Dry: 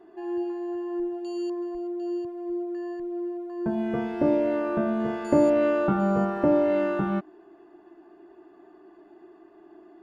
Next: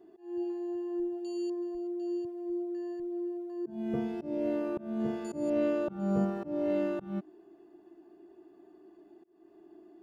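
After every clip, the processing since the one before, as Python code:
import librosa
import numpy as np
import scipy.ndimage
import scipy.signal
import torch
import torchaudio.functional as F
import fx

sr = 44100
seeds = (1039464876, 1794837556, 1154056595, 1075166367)

y = fx.peak_eq(x, sr, hz=1300.0, db=-12.5, octaves=2.5)
y = fx.auto_swell(y, sr, attack_ms=268.0)
y = fx.low_shelf(y, sr, hz=76.0, db=-8.5)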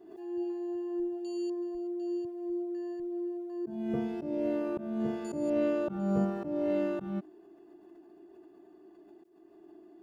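y = fx.pre_swell(x, sr, db_per_s=59.0)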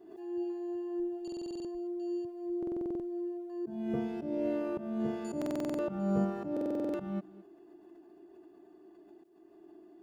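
y = x + 10.0 ** (-19.5 / 20.0) * np.pad(x, (int(216 * sr / 1000.0), 0))[:len(x)]
y = fx.buffer_glitch(y, sr, at_s=(1.23, 2.58, 5.37, 6.52), block=2048, repeats=8)
y = F.gain(torch.from_numpy(y), -1.0).numpy()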